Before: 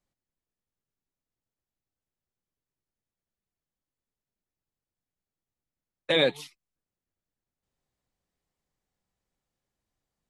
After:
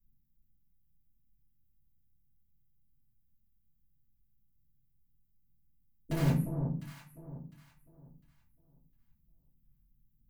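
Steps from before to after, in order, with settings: inverse Chebyshev band-stop 910–4200 Hz, stop band 80 dB; bell 66 Hz -11.5 dB 0.23 oct; notches 50/100/150/200 Hz; in parallel at -5.5 dB: wrapped overs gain 38.5 dB; on the sum: echo with dull and thin repeats by turns 0.352 s, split 980 Hz, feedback 51%, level -6 dB; reverb RT60 0.45 s, pre-delay 3 ms, DRR -7.5 dB; gain +4 dB

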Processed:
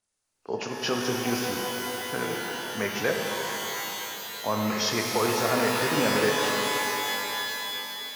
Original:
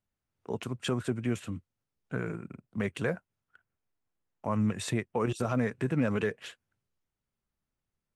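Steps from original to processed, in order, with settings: nonlinear frequency compression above 2500 Hz 1.5:1; tone controls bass -13 dB, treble +10 dB; shimmer reverb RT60 3.7 s, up +12 st, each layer -2 dB, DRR 0.5 dB; gain +5 dB

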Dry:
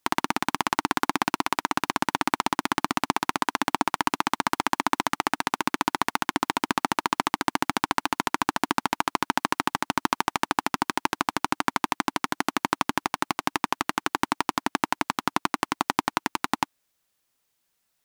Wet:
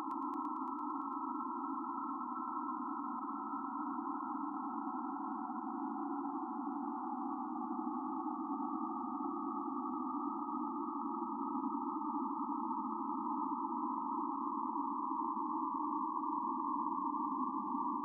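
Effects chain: loudest bins only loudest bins 16; Paulstretch 26×, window 0.50 s, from 12.15; multi-head echo 0.113 s, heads first and third, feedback 64%, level -10 dB; gain -9 dB

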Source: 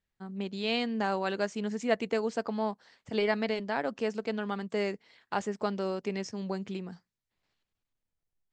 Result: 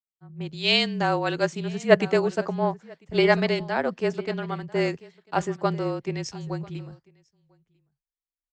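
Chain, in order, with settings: frequency shift -32 Hz; echo 0.996 s -15.5 dB; three-band expander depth 100%; gain +6 dB

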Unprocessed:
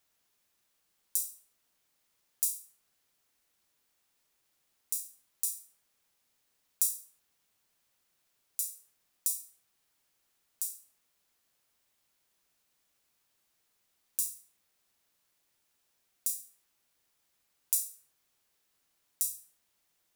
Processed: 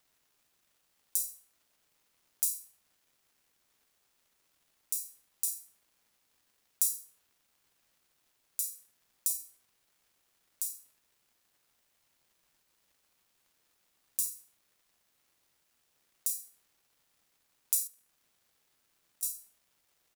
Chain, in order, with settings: doubler 48 ms -12 dB; 17.87–19.23 compressor 3:1, threshold -58 dBFS, peak gain reduction 23 dB; crackle 410/s -62 dBFS

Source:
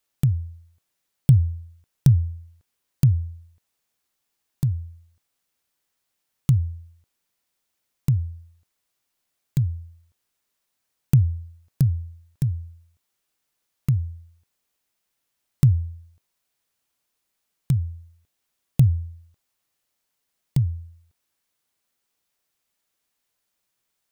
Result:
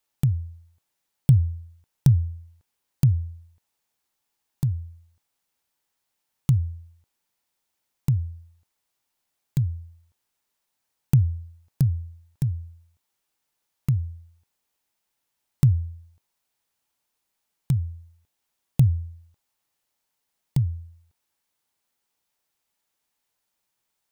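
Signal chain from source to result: bell 870 Hz +6 dB 0.28 oct; gain -1.5 dB

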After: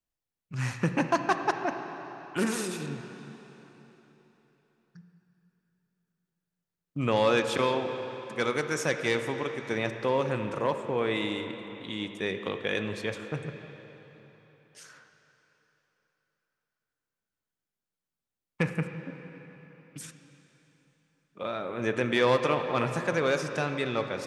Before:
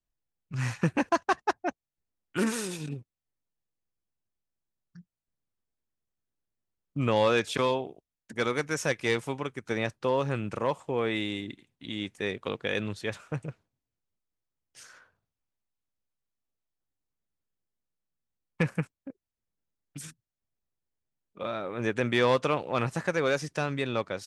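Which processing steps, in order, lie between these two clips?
low shelf 70 Hz -9 dB; reverb RT60 3.9 s, pre-delay 24 ms, DRR 6.5 dB

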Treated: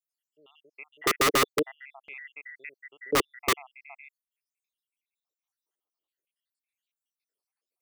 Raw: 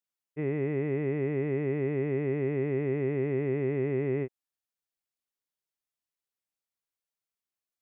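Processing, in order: random spectral dropouts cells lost 79%; LFO high-pass square 0.48 Hz 400–2400 Hz; wrapped overs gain 22.5 dB; gain +5 dB

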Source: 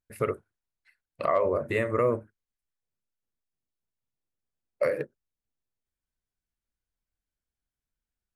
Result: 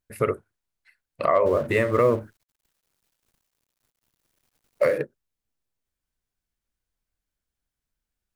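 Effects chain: 1.46–4.98 G.711 law mismatch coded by mu; gain +4.5 dB

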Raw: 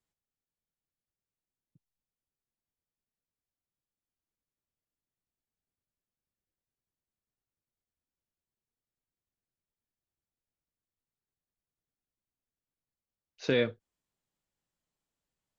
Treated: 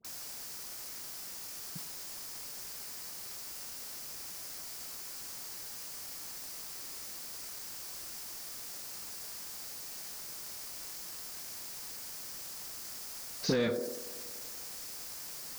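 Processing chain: added noise violet -58 dBFS; resonant high shelf 3800 Hz +8.5 dB, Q 3; compressor 4:1, threshold -46 dBFS, peak gain reduction 19 dB; bell 180 Hz +14 dB 0.94 oct; dispersion highs, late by 48 ms, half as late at 1000 Hz; on a send: band-limited delay 95 ms, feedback 76%, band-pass 500 Hz, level -14.5 dB; on the sum: overdrive pedal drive 13 dB, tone 2500 Hz, clips at -38.5 dBFS; sustainer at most 39 dB/s; gain +14 dB

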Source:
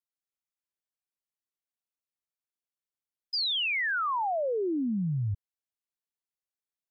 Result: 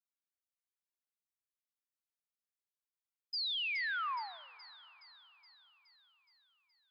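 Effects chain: steep high-pass 920 Hz 48 dB/oct; on a send: thin delay 0.42 s, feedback 63%, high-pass 4200 Hz, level -9 dB; on the sum: plate-style reverb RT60 3.6 s, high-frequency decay 0.5×, DRR 18.5 dB; gain -7.5 dB

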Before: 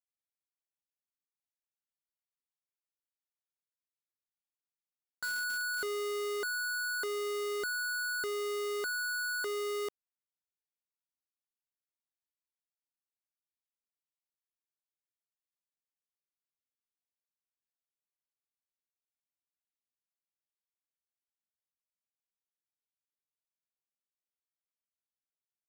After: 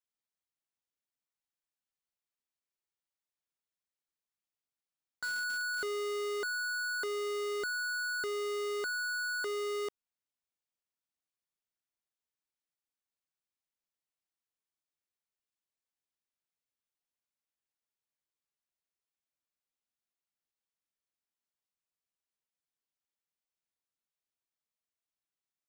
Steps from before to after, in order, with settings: bell 15000 Hz -12.5 dB 0.55 oct

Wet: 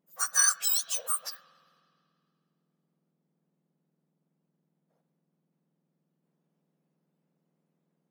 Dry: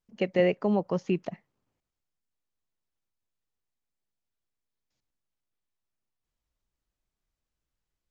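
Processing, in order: spectrum mirrored in octaves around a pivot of 1800 Hz; spring tank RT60 2.3 s, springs 52 ms, chirp 50 ms, DRR 14 dB; vibrato 6.6 Hz 39 cents; gain +5 dB

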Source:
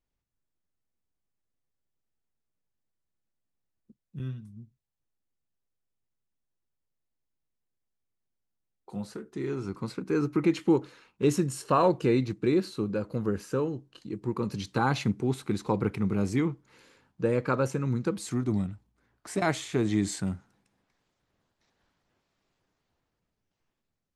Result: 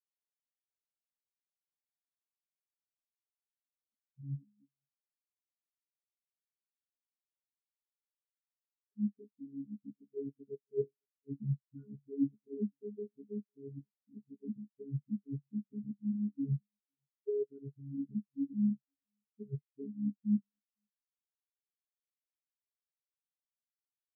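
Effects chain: chord vocoder bare fifth, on C#3; Chebyshev band-stop 390–1600 Hz, order 2; notches 50/100/150/200 Hz; comb 2.9 ms, depth 73%; reverse; compressor 10:1, threshold -40 dBFS, peak gain reduction 20.5 dB; reverse; dispersion highs, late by 41 ms, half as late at 340 Hz; on a send: echo 0.504 s -15 dB; on the sum: spectral expander 4:1; gain +7.5 dB

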